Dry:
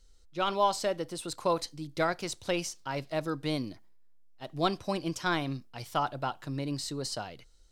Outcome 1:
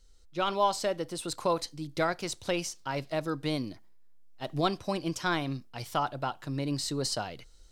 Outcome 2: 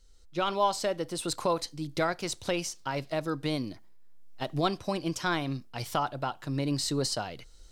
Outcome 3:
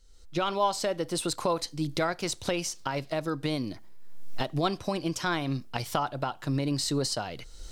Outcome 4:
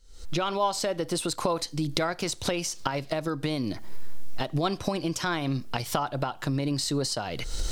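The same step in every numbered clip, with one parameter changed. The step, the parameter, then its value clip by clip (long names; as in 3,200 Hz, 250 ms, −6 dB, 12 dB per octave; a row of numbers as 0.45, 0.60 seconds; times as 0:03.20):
camcorder AGC, rising by: 5.6, 14, 37, 91 dB per second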